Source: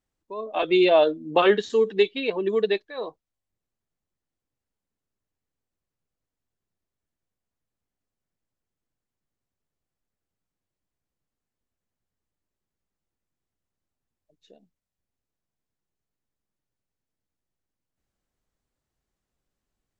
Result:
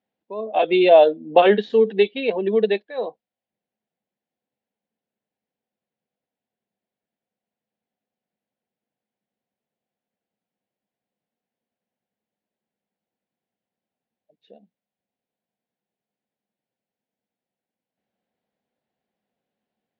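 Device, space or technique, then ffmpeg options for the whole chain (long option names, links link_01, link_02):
kitchen radio: -af "highpass=200,equalizer=frequency=210:width_type=q:width=4:gain=9,equalizer=frequency=320:width_type=q:width=4:gain=-3,equalizer=frequency=510:width_type=q:width=4:gain=5,equalizer=frequency=730:width_type=q:width=4:gain=7,equalizer=frequency=1200:width_type=q:width=4:gain=-9,lowpass=frequency=3800:width=0.5412,lowpass=frequency=3800:width=1.3066,volume=2dB"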